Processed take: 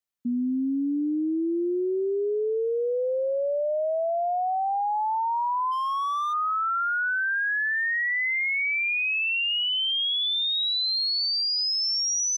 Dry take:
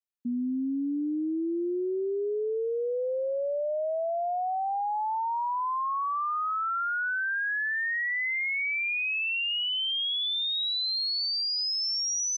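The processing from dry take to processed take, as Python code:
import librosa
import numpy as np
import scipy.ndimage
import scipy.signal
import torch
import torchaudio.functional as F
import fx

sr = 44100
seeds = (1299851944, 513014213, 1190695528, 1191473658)

y = fx.clip_hard(x, sr, threshold_db=-28.5, at=(5.71, 6.32), fade=0.02)
y = y * librosa.db_to_amplitude(3.5)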